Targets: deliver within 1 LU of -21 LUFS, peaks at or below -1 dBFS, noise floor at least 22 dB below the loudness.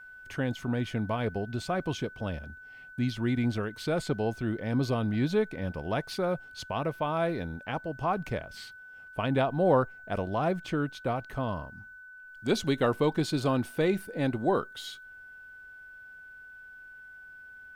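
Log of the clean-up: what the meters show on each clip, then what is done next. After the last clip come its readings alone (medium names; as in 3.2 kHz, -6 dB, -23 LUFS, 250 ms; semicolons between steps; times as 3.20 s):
steady tone 1.5 kHz; tone level -46 dBFS; loudness -30.5 LUFS; peak level -11.5 dBFS; loudness target -21.0 LUFS
-> band-stop 1.5 kHz, Q 30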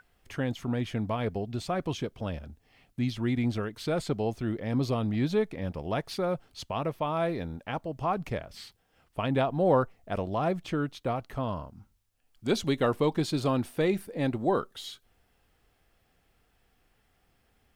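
steady tone not found; loudness -30.5 LUFS; peak level -12.0 dBFS; loudness target -21.0 LUFS
-> trim +9.5 dB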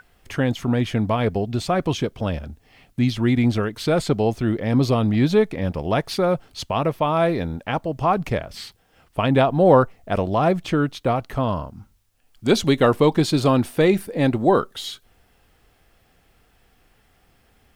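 loudness -21.0 LUFS; peak level -2.5 dBFS; noise floor -61 dBFS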